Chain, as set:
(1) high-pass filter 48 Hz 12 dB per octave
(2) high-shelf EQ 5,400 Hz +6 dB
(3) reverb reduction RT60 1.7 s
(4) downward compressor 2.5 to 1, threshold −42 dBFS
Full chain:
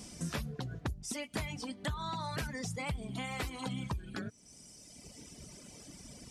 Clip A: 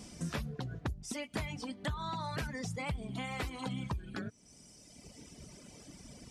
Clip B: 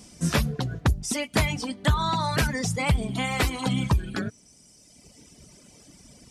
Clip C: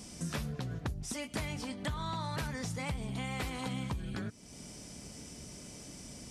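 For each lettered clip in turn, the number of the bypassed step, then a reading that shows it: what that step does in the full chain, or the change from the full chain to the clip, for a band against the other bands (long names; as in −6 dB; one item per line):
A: 2, 8 kHz band −3.5 dB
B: 4, average gain reduction 8.0 dB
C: 3, change in momentary loudness spread −3 LU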